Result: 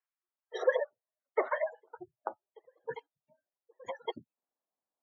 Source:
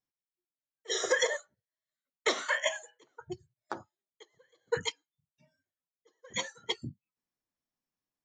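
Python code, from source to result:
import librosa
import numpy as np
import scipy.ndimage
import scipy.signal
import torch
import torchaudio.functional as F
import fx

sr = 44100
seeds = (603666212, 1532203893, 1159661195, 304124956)

y = fx.filter_sweep_bandpass(x, sr, from_hz=1500.0, to_hz=670.0, start_s=0.06, end_s=1.1, q=1.7)
y = fx.spec_gate(y, sr, threshold_db=-20, keep='strong')
y = fx.stretch_grains(y, sr, factor=0.61, grain_ms=87.0)
y = y * 10.0 ** (7.5 / 20.0)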